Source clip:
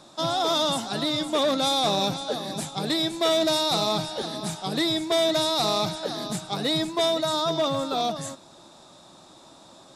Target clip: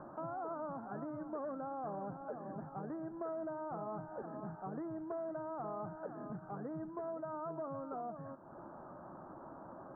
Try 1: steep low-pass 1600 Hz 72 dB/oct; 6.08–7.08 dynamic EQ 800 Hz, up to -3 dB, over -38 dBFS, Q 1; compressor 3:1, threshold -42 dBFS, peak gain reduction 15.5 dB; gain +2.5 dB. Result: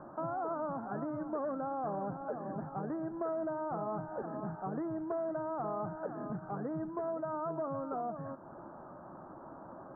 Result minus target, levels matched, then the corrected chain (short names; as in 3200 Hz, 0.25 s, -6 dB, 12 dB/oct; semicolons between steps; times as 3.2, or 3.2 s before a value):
compressor: peak gain reduction -5.5 dB
steep low-pass 1600 Hz 72 dB/oct; 6.08–7.08 dynamic EQ 800 Hz, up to -3 dB, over -38 dBFS, Q 1; compressor 3:1, threshold -50 dBFS, peak gain reduction 21 dB; gain +2.5 dB